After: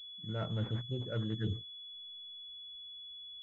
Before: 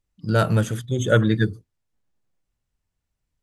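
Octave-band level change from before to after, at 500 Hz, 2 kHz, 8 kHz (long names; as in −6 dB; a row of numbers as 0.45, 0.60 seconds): −19.5 dB, −24.0 dB, below −35 dB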